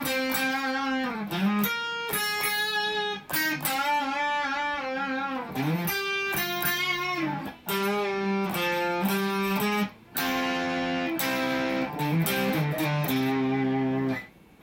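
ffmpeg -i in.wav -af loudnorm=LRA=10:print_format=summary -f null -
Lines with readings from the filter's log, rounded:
Input Integrated:    -27.1 LUFS
Input True Peak:      -8.7 dBTP
Input LRA:             1.0 LU
Input Threshold:     -37.1 LUFS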